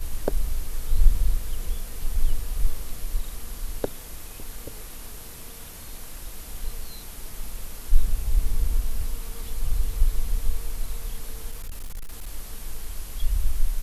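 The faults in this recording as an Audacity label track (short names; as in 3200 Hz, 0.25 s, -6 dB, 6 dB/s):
11.510000	12.280000	clipped -29 dBFS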